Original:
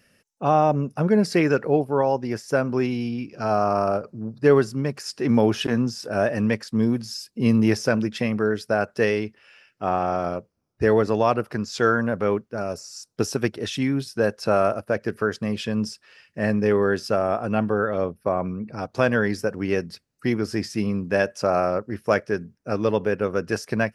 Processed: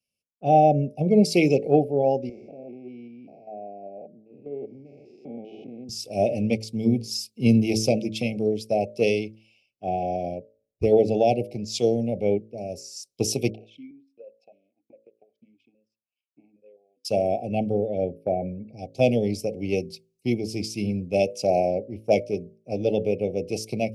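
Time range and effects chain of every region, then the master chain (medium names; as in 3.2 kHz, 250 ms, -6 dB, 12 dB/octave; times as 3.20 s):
2.29–5.89 s: spectrogram pixelated in time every 200 ms + band-pass 210–2000 Hz + compression 2:1, threshold -32 dBFS
13.50–17.05 s: compression 3:1, threshold -32 dBFS + transient shaper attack +9 dB, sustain -12 dB + stepped vowel filter 4.9 Hz
whole clip: Chebyshev band-stop 790–2200 Hz, order 5; de-hum 54.84 Hz, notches 11; three bands expanded up and down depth 70%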